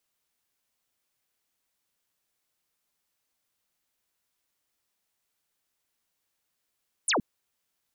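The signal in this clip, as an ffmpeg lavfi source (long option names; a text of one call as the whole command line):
ffmpeg -f lavfi -i "aevalsrc='0.0794*clip(t/0.002,0,1)*clip((0.12-t)/0.002,0,1)*sin(2*PI*11000*0.12/log(170/11000)*(exp(log(170/11000)*t/0.12)-1))':duration=0.12:sample_rate=44100" out.wav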